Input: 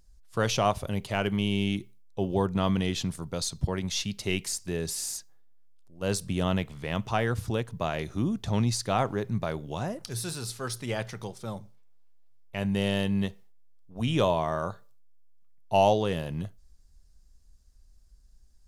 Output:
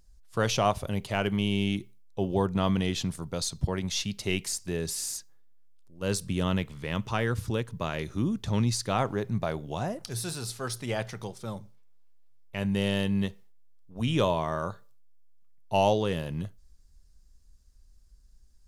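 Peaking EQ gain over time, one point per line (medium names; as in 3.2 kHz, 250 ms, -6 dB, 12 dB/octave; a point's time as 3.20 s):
peaking EQ 710 Hz 0.35 oct
4.68 s 0 dB
5.14 s -7.5 dB
8.68 s -7.5 dB
9.38 s +3 dB
11.06 s +3 dB
11.56 s -4.5 dB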